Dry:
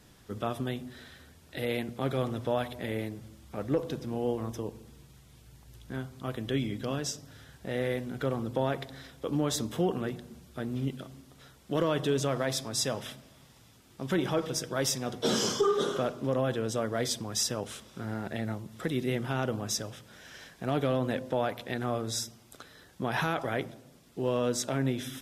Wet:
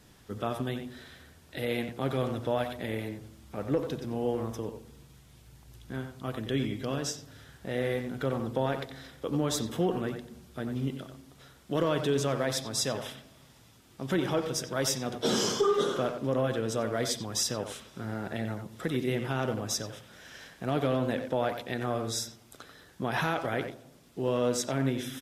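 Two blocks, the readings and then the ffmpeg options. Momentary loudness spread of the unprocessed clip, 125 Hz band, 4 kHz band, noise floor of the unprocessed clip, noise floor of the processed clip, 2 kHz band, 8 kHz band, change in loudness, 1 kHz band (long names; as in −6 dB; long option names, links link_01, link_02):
15 LU, 0.0 dB, +0.5 dB, −58 dBFS, −57 dBFS, +0.5 dB, 0.0 dB, +0.5 dB, +0.5 dB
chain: -filter_complex "[0:a]asplit=2[link_01][link_02];[link_02]adelay=90,highpass=300,lowpass=3400,asoftclip=type=hard:threshold=-25.5dB,volume=-7dB[link_03];[link_01][link_03]amix=inputs=2:normalize=0"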